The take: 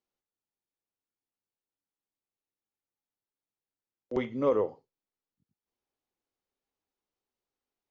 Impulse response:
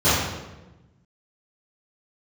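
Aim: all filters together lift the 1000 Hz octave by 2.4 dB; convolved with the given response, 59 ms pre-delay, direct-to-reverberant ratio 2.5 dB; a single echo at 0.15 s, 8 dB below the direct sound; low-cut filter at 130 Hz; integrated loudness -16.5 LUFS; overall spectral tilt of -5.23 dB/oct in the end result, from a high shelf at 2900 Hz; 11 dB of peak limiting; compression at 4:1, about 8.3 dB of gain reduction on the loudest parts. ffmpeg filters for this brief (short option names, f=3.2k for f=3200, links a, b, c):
-filter_complex "[0:a]highpass=130,equalizer=f=1k:t=o:g=3.5,highshelf=f=2.9k:g=-6,acompressor=threshold=-30dB:ratio=4,alimiter=level_in=8.5dB:limit=-24dB:level=0:latency=1,volume=-8.5dB,aecho=1:1:150:0.398,asplit=2[a][b];[1:a]atrim=start_sample=2205,adelay=59[c];[b][c]afir=irnorm=-1:irlink=0,volume=-24dB[d];[a][d]amix=inputs=2:normalize=0,volume=23dB"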